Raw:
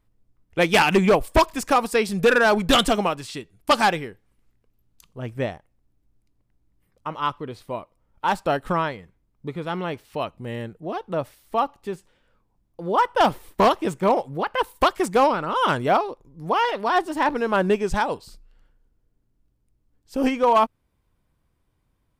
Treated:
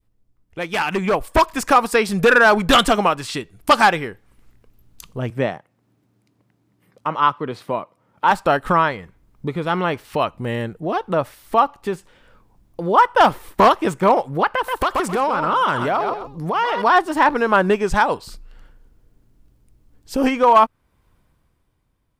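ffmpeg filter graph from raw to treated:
-filter_complex "[0:a]asettb=1/sr,asplit=3[s0][s1][s2];[s0]atrim=end=5.304[s3];[s1]atrim=start=5.3:end=8.31,asetpts=PTS-STARTPTS,afade=t=in:d=0.004:c=qsin,afade=t=out:st=3.006:d=0.004:c=qsin,highpass=f=120:w=0.5412,highpass=f=120:w=1.3066,highshelf=f=5300:g=-6.5[s4];[s2]atrim=start=8.306[s5];[s3][s4]acrossfade=d=0.004:c1=hsin:c2=qsin[s6];[s6][s5]acrossfade=d=0.004:c1=qsin:c2=hsin,asettb=1/sr,asplit=3[s7][s8][s9];[s7]atrim=end=14.514[s10];[s8]atrim=start=14.51:end=16.82,asetpts=PTS-STARTPTS,afade=t=in:d=0.004:c=qsin,afade=t=out:st=2.306:d=0.004:c=qsin,aecho=1:1:130|260:0.251|0.0427,atrim=end_sample=101871,acompressor=threshold=0.0562:ratio=6:attack=3.2:release=140:knee=1:detection=peak[s11];[s9]atrim=start=16.816[s12];[s10][s11]acrossfade=d=0.004:c1=hsin:c2=qsin[s13];[s13][s12]acrossfade=d=0.004:c1=qsin:c2=hsin,acompressor=threshold=0.00501:ratio=1.5,adynamicequalizer=threshold=0.00794:dfrequency=1300:dqfactor=0.9:tfrequency=1300:tqfactor=0.9:attack=5:release=100:ratio=0.375:range=3:mode=boostabove:tftype=bell,dynaudnorm=f=140:g=17:m=5.01"

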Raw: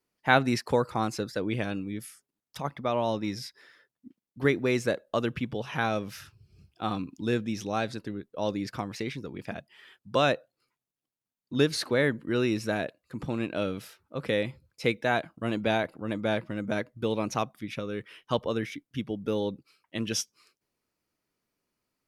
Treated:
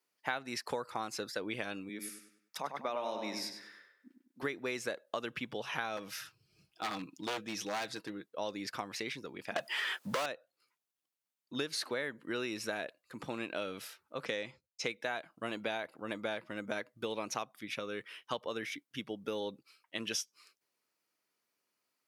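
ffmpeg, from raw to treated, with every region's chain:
-filter_complex "[0:a]asettb=1/sr,asplit=3[s0][s1][s2];[s0]atrim=end=1.894[s3];[s1]atrim=start=1.89:end=4.43,asetpts=PTS-STARTPTS,afade=t=in:d=0.004:c=qsin,afade=t=out:st=2.536:d=0.004:c=qsin,highpass=f=160:w=0.5412,highpass=f=160:w=1.3066,equalizer=f=3100:w=5:g=-5.5,asplit=2[s4][s5];[s5]adelay=99,lowpass=f=4500:p=1,volume=0.531,asplit=2[s6][s7];[s7]adelay=99,lowpass=f=4500:p=1,volume=0.41,asplit=2[s8][s9];[s9]adelay=99,lowpass=f=4500:p=1,volume=0.41,asplit=2[s10][s11];[s11]adelay=99,lowpass=f=4500:p=1,volume=0.41,asplit=2[s12][s13];[s13]adelay=99,lowpass=f=4500:p=1,volume=0.41[s14];[s4][s6][s8][s10][s12][s14]amix=inputs=6:normalize=0,atrim=end_sample=112014[s15];[s2]atrim=start=4.426[s16];[s3][s15]acrossfade=d=0.004:c1=hsin:c2=qsin[s17];[s17][s16]acrossfade=d=0.004:c1=qsin:c2=hsin,asettb=1/sr,asplit=3[s18][s19][s20];[s18]atrim=end=5.974[s21];[s19]atrim=start=5.97:end=8.3,asetpts=PTS-STARTPTS,afade=t=in:d=0.004:c=qsin,afade=t=out:st=2.326:d=0.004:c=qsin,aecho=1:1:6.3:0.44,atrim=end_sample=102753,aeval=exprs='0.0596*(abs(mod(val(0)/0.0596+3,4)-2)-1)':c=same[s22];[s20]atrim=start=8.296[s23];[s21][s22]acrossfade=d=0.004:c1=hsin:c2=qsin[s24];[s24][s23]acrossfade=d=0.004:c1=qsin:c2=hsin,asettb=1/sr,asplit=3[s25][s26][s27];[s25]atrim=end=9.564[s28];[s26]atrim=start=9.56:end=10.26,asetpts=PTS-STARTPTS,afade=t=in:d=0.004:c=qsin,afade=t=out:st=0.696:d=0.004:c=qsin,equalizer=f=3100:w=0.52:g=-6,asplit=2[s29][s30];[s30]highpass=f=720:p=1,volume=89.1,asoftclip=type=tanh:threshold=0.237[s31];[s29][s31]amix=inputs=2:normalize=0,lowpass=f=5900:p=1,volume=0.501[s32];[s27]atrim=start=10.256[s33];[s28][s32]acrossfade=d=0.004:c1=hsin:c2=qsin[s34];[s34][s33]acrossfade=d=0.004:c1=qsin:c2=hsin,asettb=1/sr,asplit=3[s35][s36][s37];[s35]atrim=end=14.254[s38];[s36]atrim=start=14.25:end=14.88,asetpts=PTS-STARTPTS,afade=t=in:d=0.004:c=qsin,afade=t=out:st=0.626:d=0.004:c=qsin,agate=range=0.0224:threshold=0.00251:ratio=3:release=100:detection=peak,adynamicsmooth=sensitivity=1.5:basefreq=7200,equalizer=f=6300:w=2.9:g=13[s39];[s37]atrim=start=14.876[s40];[s38][s39]acrossfade=d=0.004:c1=hsin:c2=qsin[s41];[s41][s40]acrossfade=d=0.004:c1=qsin:c2=hsin,highpass=f=760:p=1,acompressor=threshold=0.02:ratio=6,volume=1.12"

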